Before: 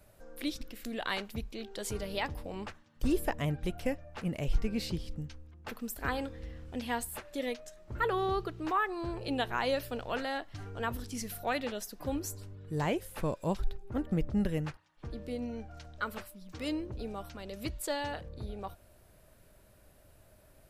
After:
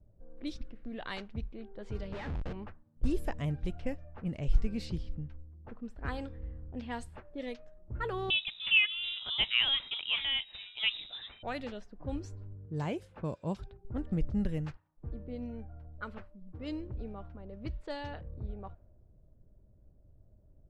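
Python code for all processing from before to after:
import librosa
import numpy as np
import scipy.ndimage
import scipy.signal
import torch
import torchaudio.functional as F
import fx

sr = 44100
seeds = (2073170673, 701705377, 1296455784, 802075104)

y = fx.chain(x, sr, fx.peak_eq(hz=1600.0, db=6.0, octaves=1.1),
    fx.schmitt(flips_db=-45.5), at=(2.12, 2.53))
y = fx.chain(y, sr, fx.peak_eq(hz=950.0, db=14.0, octaves=1.6),
    fx.freq_invert(carrier_hz=3800), at=(8.3, 11.43))
y = fx.chain(y, sr, fx.highpass(hz=91.0, slope=12),
    fx.notch(hz=1900.0, q=14.0), at=(12.66, 13.85))
y = fx.env_lowpass(y, sr, base_hz=390.0, full_db=-28.5)
y = scipy.signal.sosfilt(scipy.signal.butter(2, 8800.0, 'lowpass', fs=sr, output='sos'), y)
y = fx.low_shelf(y, sr, hz=190.0, db=10.0)
y = y * 10.0 ** (-6.5 / 20.0)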